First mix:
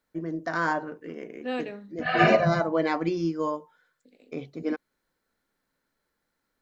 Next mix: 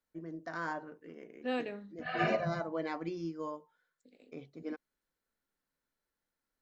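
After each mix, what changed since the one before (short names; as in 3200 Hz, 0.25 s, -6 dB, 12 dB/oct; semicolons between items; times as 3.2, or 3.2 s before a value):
first voice -11.5 dB; second voice -3.5 dB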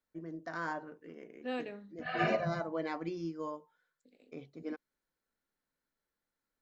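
second voice -3.0 dB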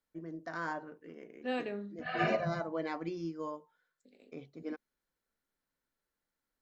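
reverb: on, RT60 0.35 s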